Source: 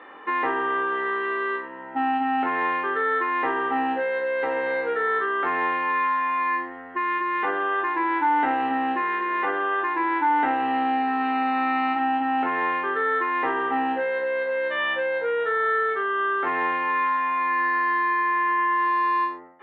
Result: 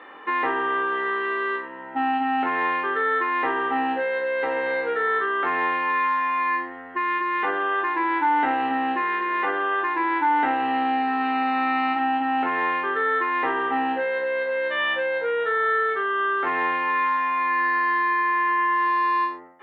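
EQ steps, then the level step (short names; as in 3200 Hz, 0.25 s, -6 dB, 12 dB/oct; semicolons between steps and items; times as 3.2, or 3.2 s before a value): high shelf 3500 Hz +6.5 dB; 0.0 dB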